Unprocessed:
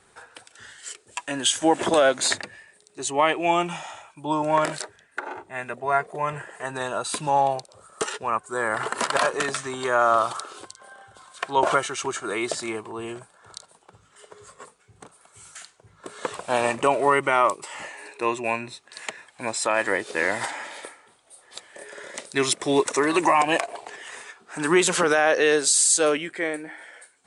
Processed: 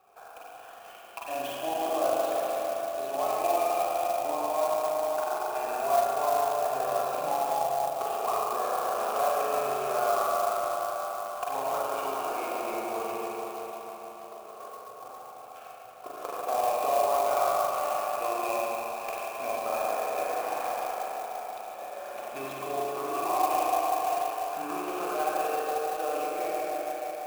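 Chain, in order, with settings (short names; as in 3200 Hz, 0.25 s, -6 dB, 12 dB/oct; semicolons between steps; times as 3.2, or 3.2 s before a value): tilt -1.5 dB/oct; compressor 6:1, threshold -29 dBFS, peak gain reduction 16 dB; vowel filter a; repeats that get brighter 0.162 s, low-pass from 400 Hz, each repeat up 1 oct, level -6 dB; spring tank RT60 3.9 s, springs 37/44 ms, chirp 50 ms, DRR -7 dB; clock jitter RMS 0.036 ms; gain +6.5 dB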